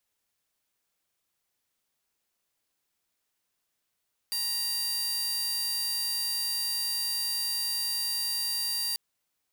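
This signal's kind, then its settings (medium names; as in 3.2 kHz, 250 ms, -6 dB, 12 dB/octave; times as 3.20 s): tone saw 4.69 kHz -25.5 dBFS 4.64 s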